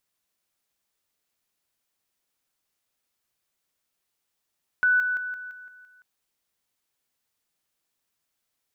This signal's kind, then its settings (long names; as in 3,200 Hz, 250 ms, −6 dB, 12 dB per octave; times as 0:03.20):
level staircase 1,490 Hz −17 dBFS, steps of −6 dB, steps 7, 0.17 s 0.00 s